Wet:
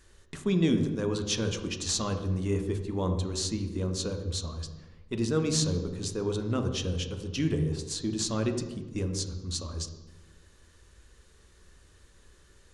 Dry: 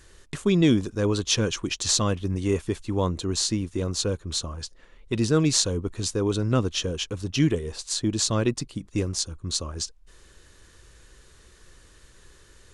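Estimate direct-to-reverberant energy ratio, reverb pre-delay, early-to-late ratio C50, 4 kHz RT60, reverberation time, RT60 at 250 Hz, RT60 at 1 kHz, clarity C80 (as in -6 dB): 5.5 dB, 3 ms, 8.0 dB, 0.80 s, 1.1 s, 1.4 s, 1.1 s, 10.0 dB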